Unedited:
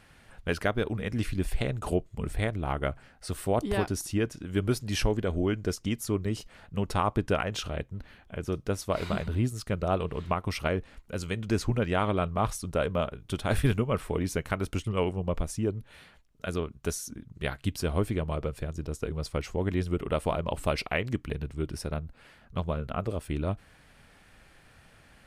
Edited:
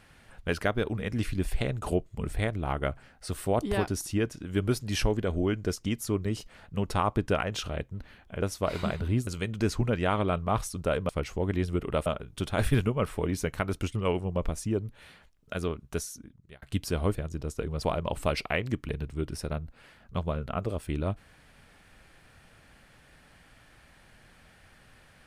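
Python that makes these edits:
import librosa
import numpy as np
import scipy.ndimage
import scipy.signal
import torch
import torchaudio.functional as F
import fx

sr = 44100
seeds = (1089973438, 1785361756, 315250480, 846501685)

y = fx.edit(x, sr, fx.cut(start_s=8.42, length_s=0.27),
    fx.cut(start_s=9.54, length_s=1.62),
    fx.fade_out_span(start_s=16.79, length_s=0.75),
    fx.cut(start_s=18.07, length_s=0.52),
    fx.move(start_s=19.27, length_s=0.97, to_s=12.98), tone=tone)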